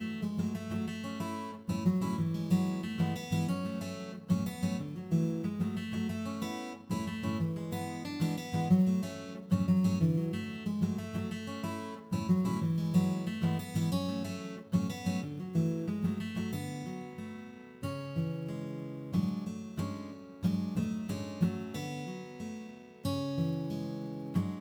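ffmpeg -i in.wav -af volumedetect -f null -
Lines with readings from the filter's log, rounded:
mean_volume: -33.4 dB
max_volume: -15.3 dB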